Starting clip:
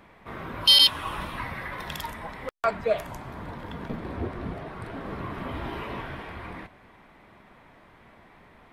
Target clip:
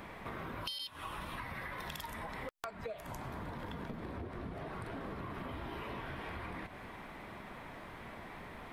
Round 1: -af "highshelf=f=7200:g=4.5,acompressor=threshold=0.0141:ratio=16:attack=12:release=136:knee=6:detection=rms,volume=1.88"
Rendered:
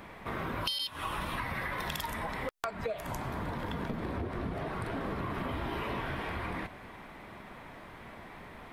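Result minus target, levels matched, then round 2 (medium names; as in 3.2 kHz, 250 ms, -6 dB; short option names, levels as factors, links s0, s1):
compression: peak gain reduction -7.5 dB
-af "highshelf=f=7200:g=4.5,acompressor=threshold=0.00562:ratio=16:attack=12:release=136:knee=6:detection=rms,volume=1.88"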